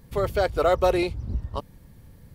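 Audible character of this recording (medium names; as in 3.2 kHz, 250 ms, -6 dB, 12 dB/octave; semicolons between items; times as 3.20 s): noise floor -52 dBFS; spectral tilt -5.0 dB/octave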